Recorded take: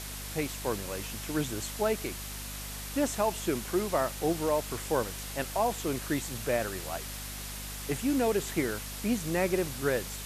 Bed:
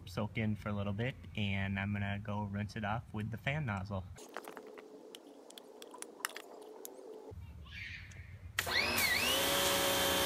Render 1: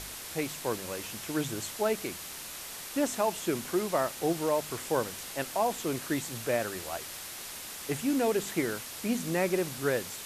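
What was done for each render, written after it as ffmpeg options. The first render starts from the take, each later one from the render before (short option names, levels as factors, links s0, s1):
-af "bandreject=f=50:t=h:w=4,bandreject=f=100:t=h:w=4,bandreject=f=150:t=h:w=4,bandreject=f=200:t=h:w=4,bandreject=f=250:t=h:w=4"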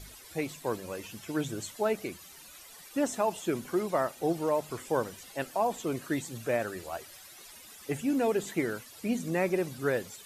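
-af "afftdn=nr=14:nf=-42"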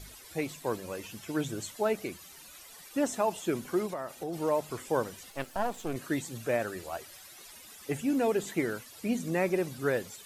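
-filter_complex "[0:a]asplit=3[s0][s1][s2];[s0]afade=t=out:st=3.86:d=0.02[s3];[s1]acompressor=threshold=0.0251:ratio=6:attack=3.2:release=140:knee=1:detection=peak,afade=t=in:st=3.86:d=0.02,afade=t=out:st=4.32:d=0.02[s4];[s2]afade=t=in:st=4.32:d=0.02[s5];[s3][s4][s5]amix=inputs=3:normalize=0,asettb=1/sr,asplit=3[s6][s7][s8];[s6]atrim=end=5.304[s9];[s7]atrim=start=5.3:end=5.96,asetpts=PTS-STARTPTS,afade=t=in:d=0.004:c=qsin,afade=t=out:st=0.656:d=0.004:c=qsin,aeval=exprs='if(lt(val(0),0),0.251*val(0),val(0))':c=same[s10];[s8]atrim=start=5.956[s11];[s9][s10]acrossfade=d=0.004:c1=hsin:c2=qsin[s12];[s12][s11]acrossfade=d=0.004:c1=qsin:c2=hsin"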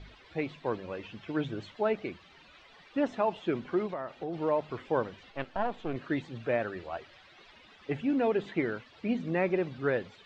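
-af "lowpass=f=3600:w=0.5412,lowpass=f=3600:w=1.3066"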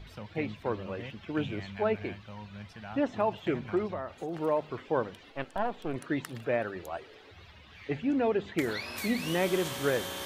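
-filter_complex "[1:a]volume=0.501[s0];[0:a][s0]amix=inputs=2:normalize=0"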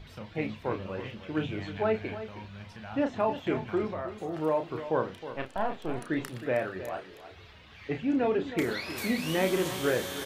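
-filter_complex "[0:a]asplit=2[s0][s1];[s1]adelay=32,volume=0.447[s2];[s0][s2]amix=inputs=2:normalize=0,aecho=1:1:315:0.237"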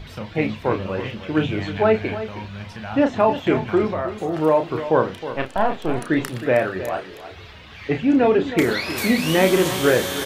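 -af "volume=3.35"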